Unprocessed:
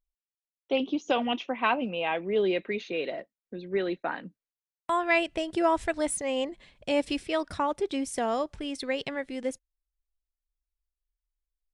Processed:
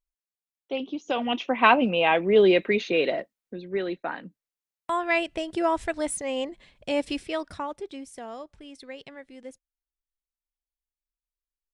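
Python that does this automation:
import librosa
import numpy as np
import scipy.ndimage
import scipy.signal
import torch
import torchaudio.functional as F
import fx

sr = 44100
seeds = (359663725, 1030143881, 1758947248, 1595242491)

y = fx.gain(x, sr, db=fx.line((1.01, -3.5), (1.63, 8.0), (3.1, 8.0), (3.69, 0.0), (7.23, 0.0), (8.13, -10.5)))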